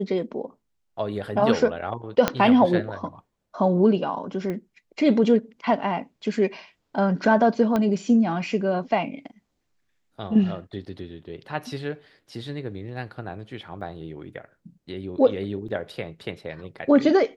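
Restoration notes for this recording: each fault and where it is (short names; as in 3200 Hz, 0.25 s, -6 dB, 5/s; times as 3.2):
2.28 pop -5 dBFS
4.5 pop -19 dBFS
7.76 pop -12 dBFS
13.81 gap 3.8 ms
15.68 gap 4.9 ms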